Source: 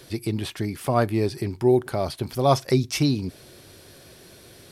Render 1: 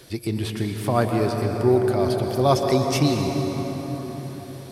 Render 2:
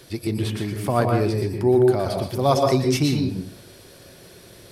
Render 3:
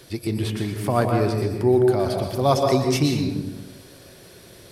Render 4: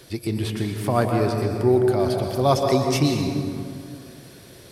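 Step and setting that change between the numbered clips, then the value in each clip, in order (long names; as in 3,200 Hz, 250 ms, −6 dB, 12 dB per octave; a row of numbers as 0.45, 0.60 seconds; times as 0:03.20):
dense smooth reverb, RT60: 5.3, 0.5, 1.1, 2.3 seconds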